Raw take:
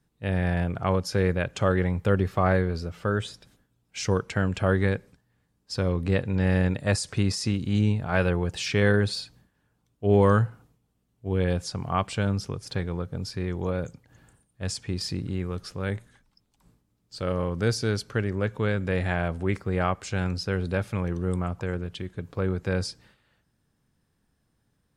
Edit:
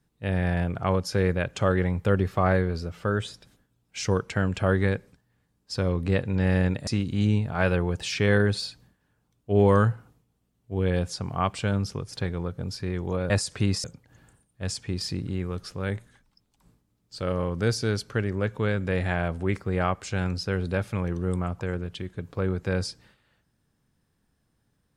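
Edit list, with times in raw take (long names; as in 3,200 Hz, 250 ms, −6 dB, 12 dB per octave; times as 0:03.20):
0:06.87–0:07.41: move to 0:13.84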